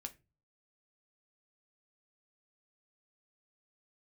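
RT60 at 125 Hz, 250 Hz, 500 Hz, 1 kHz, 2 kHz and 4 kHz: 0.60 s, 0.40 s, 0.35 s, 0.25 s, 0.25 s, 0.20 s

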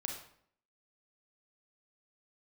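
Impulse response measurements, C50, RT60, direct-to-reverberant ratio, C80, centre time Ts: 4.5 dB, 0.60 s, 1.5 dB, 8.0 dB, 32 ms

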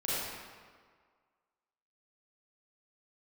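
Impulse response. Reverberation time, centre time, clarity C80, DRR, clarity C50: 1.7 s, 137 ms, -2.5 dB, -9.5 dB, -6.0 dB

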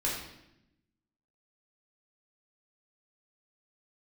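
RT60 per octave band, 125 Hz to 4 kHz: 1.2 s, 1.3 s, 0.90 s, 0.75 s, 0.80 s, 0.75 s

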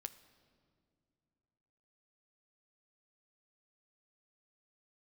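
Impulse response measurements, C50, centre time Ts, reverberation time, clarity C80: 15.0 dB, 7 ms, 2.5 s, 16.5 dB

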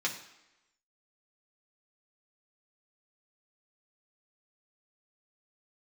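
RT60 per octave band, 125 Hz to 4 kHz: 0.70 s, 0.90 s, 0.95 s, 1.0 s, 0.95 s, 0.85 s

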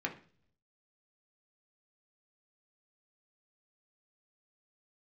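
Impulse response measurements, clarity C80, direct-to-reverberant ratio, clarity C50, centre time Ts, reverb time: 17.5 dB, 0.5 dB, 12.5 dB, 12 ms, 0.45 s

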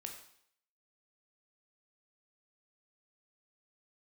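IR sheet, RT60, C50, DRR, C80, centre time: 0.65 s, 6.5 dB, 2.0 dB, 9.0 dB, 24 ms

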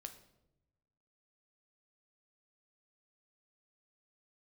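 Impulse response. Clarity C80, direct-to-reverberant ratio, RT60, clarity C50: 14.5 dB, 6.5 dB, 0.90 s, 11.5 dB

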